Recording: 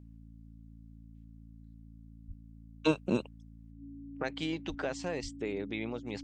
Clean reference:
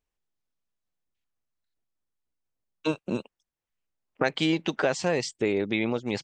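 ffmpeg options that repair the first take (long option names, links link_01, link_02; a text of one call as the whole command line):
ffmpeg -i in.wav -filter_complex "[0:a]bandreject=frequency=55.7:width_type=h:width=4,bandreject=frequency=111.4:width_type=h:width=4,bandreject=frequency=167.1:width_type=h:width=4,bandreject=frequency=222.8:width_type=h:width=4,bandreject=frequency=278.5:width_type=h:width=4,bandreject=frequency=280:width=30,asplit=3[link_01][link_02][link_03];[link_01]afade=type=out:start_time=2.27:duration=0.02[link_04];[link_02]highpass=frequency=140:width=0.5412,highpass=frequency=140:width=1.3066,afade=type=in:start_time=2.27:duration=0.02,afade=type=out:start_time=2.39:duration=0.02[link_05];[link_03]afade=type=in:start_time=2.39:duration=0.02[link_06];[link_04][link_05][link_06]amix=inputs=3:normalize=0,asplit=3[link_07][link_08][link_09];[link_07]afade=type=out:start_time=4.68:duration=0.02[link_10];[link_08]highpass=frequency=140:width=0.5412,highpass=frequency=140:width=1.3066,afade=type=in:start_time=4.68:duration=0.02,afade=type=out:start_time=4.8:duration=0.02[link_11];[link_09]afade=type=in:start_time=4.8:duration=0.02[link_12];[link_10][link_11][link_12]amix=inputs=3:normalize=0,asplit=3[link_13][link_14][link_15];[link_13]afade=type=out:start_time=5.22:duration=0.02[link_16];[link_14]highpass=frequency=140:width=0.5412,highpass=frequency=140:width=1.3066,afade=type=in:start_time=5.22:duration=0.02,afade=type=out:start_time=5.34:duration=0.02[link_17];[link_15]afade=type=in:start_time=5.34:duration=0.02[link_18];[link_16][link_17][link_18]amix=inputs=3:normalize=0,asetnsamples=nb_out_samples=441:pad=0,asendcmd='3.71 volume volume 10.5dB',volume=0dB" out.wav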